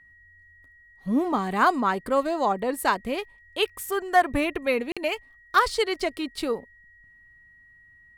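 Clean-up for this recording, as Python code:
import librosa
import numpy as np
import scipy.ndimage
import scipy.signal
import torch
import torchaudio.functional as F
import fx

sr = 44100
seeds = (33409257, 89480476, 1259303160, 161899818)

y = fx.notch(x, sr, hz=1900.0, q=30.0)
y = fx.fix_interpolate(y, sr, at_s=(4.92,), length_ms=46.0)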